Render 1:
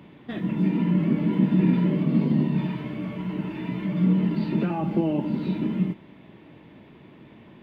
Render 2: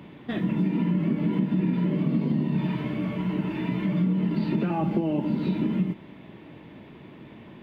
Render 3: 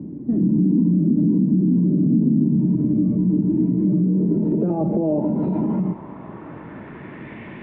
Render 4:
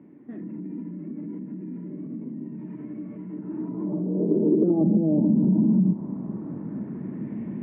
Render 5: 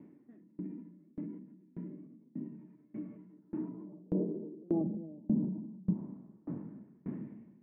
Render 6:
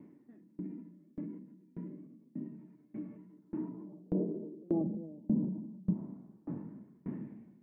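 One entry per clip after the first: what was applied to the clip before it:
compression, threshold -24 dBFS, peak gain reduction 9 dB; trim +3 dB
peak limiter -24 dBFS, peak gain reduction 10.5 dB; low-pass sweep 280 Hz -> 2.1 kHz, 3.61–7.42 s; trim +8.5 dB
band-pass sweep 2 kHz -> 210 Hz, 3.29–4.98 s; compression, threshold -25 dBFS, peak gain reduction 6 dB; trim +8.5 dB
peak limiter -17.5 dBFS, peak gain reduction 6.5 dB; sawtooth tremolo in dB decaying 1.7 Hz, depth 30 dB; trim -2.5 dB
flange 0.29 Hz, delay 0.9 ms, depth 1.2 ms, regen +84%; trim +5 dB

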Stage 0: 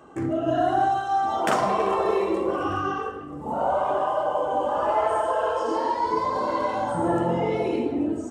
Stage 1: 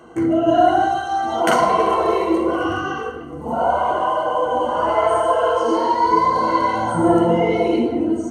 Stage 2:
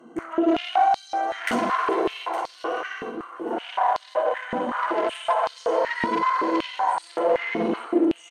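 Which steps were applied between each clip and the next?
rippled EQ curve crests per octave 1.9, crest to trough 12 dB; trim +4.5 dB
valve stage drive 15 dB, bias 0.65; delay 864 ms -11.5 dB; step-sequenced high-pass 5.3 Hz 230–4400 Hz; trim -5.5 dB

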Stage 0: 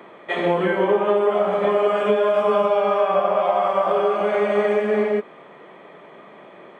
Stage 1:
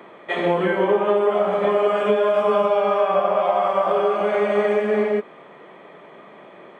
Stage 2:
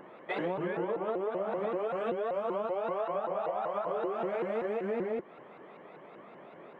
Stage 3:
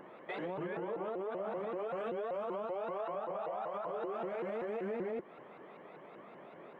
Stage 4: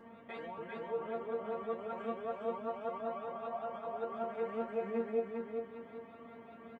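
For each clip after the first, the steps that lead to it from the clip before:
no audible change
treble shelf 3 kHz -10.5 dB; compression, threshold -24 dBFS, peak gain reduction 10 dB; vibrato with a chosen wave saw up 5.2 Hz, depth 250 cents; trim -6 dB
peak limiter -29 dBFS, peak gain reduction 7.5 dB; trim -2 dB
band noise 79–320 Hz -56 dBFS; feedback comb 230 Hz, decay 0.17 s, harmonics all, mix 100%; feedback delay 401 ms, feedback 33%, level -4 dB; trim +7.5 dB

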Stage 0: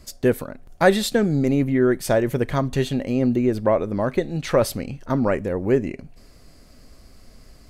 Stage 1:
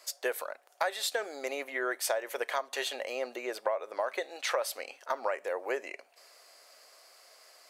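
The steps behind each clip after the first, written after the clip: inverse Chebyshev high-pass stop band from 170 Hz, stop band 60 dB; compression 12:1, threshold -27 dBFS, peak gain reduction 14.5 dB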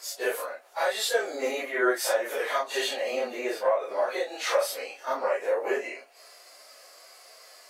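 phase randomisation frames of 100 ms; harmonic-percussive split harmonic +9 dB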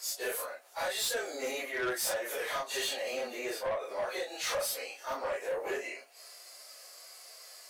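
treble shelf 3.4 kHz +9.5 dB; saturation -22.5 dBFS, distortion -12 dB; trim -5.5 dB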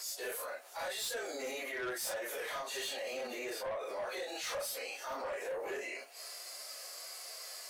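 peak limiter -38.5 dBFS, peak gain reduction 10.5 dB; trim +4.5 dB

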